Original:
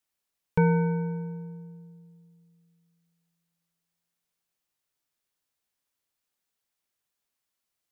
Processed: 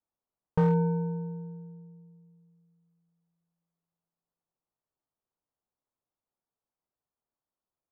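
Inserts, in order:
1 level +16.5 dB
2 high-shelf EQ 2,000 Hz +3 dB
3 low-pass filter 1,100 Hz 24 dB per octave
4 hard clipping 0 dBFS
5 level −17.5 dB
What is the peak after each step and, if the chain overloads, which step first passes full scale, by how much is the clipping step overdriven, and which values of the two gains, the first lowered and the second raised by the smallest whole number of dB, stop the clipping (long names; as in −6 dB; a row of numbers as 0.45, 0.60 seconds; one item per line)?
+6.0, +6.0, +5.0, 0.0, −17.5 dBFS
step 1, 5.0 dB
step 1 +11.5 dB, step 5 −12.5 dB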